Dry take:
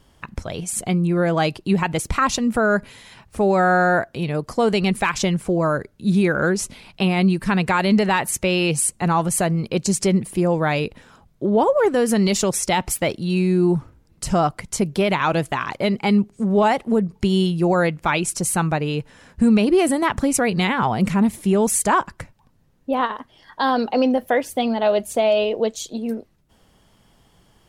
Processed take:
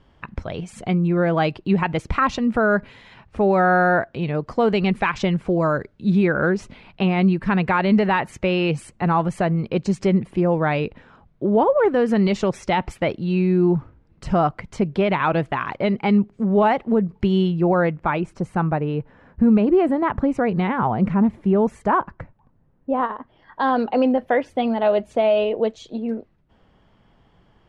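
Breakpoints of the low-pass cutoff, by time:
5.43 s 2.9 kHz
5.65 s 4.9 kHz
6.33 s 2.5 kHz
17.38 s 2.5 kHz
18.21 s 1.4 kHz
23.14 s 1.4 kHz
23.81 s 2.5 kHz

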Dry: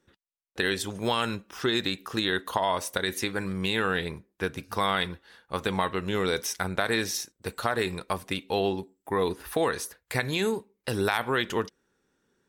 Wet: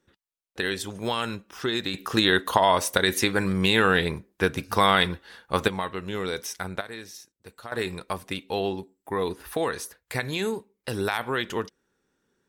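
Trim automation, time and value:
-1 dB
from 1.94 s +6.5 dB
from 5.68 s -3 dB
from 6.81 s -12.5 dB
from 7.72 s -1 dB

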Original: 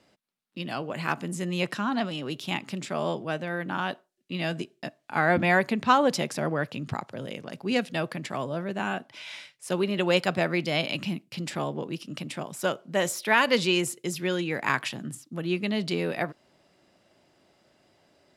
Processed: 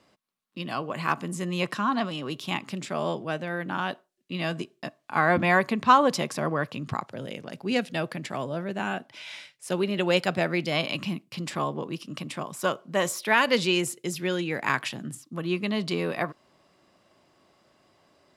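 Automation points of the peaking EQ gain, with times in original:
peaking EQ 1.1 kHz 0.22 oct
+9.5 dB
from 2.69 s +2 dB
from 4.38 s +9.5 dB
from 7.06 s -1.5 dB
from 10.72 s +10 dB
from 13.26 s +0.5 dB
from 15.23 s +11 dB

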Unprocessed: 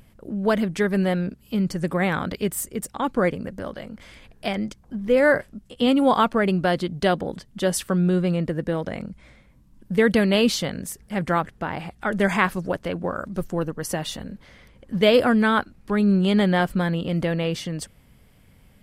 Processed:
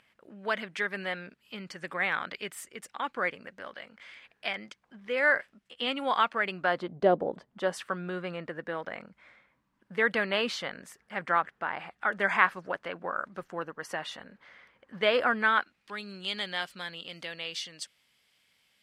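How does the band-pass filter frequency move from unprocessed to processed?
band-pass filter, Q 1.1
6.50 s 2.1 kHz
7.11 s 480 Hz
7.87 s 1.5 kHz
15.38 s 1.5 kHz
16.02 s 4 kHz

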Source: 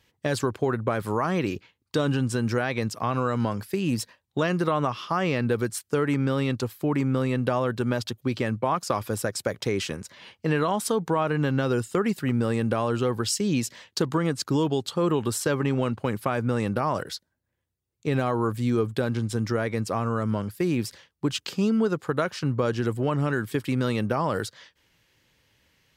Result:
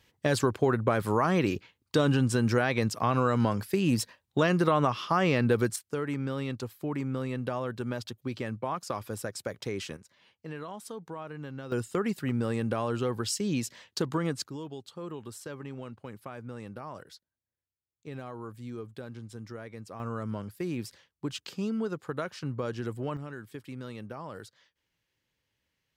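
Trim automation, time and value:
0 dB
from 5.76 s -8 dB
from 9.97 s -16 dB
from 11.72 s -5 dB
from 14.47 s -16 dB
from 20.00 s -8.5 dB
from 23.17 s -15.5 dB

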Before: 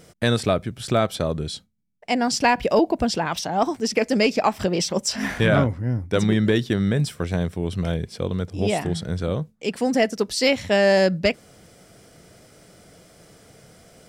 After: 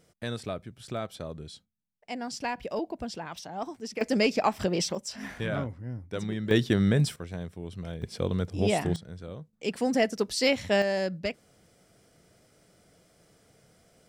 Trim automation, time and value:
-14 dB
from 4.01 s -5 dB
from 4.95 s -13 dB
from 6.51 s -2 dB
from 7.16 s -13 dB
from 8.02 s -3 dB
from 8.96 s -16 dB
from 9.53 s -5 dB
from 10.82 s -11.5 dB

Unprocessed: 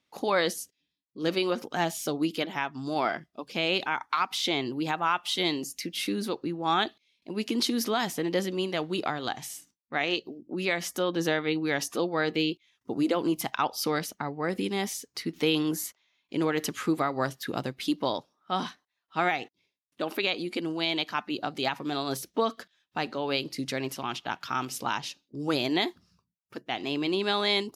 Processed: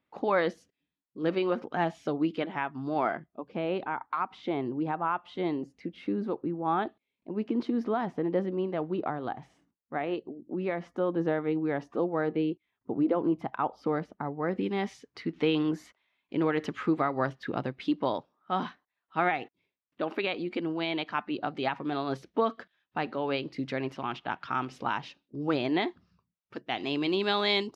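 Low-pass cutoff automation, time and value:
2.93 s 1.9 kHz
3.44 s 1.1 kHz
14.19 s 1.1 kHz
14.79 s 2.3 kHz
25.87 s 2.3 kHz
26.86 s 4.5 kHz

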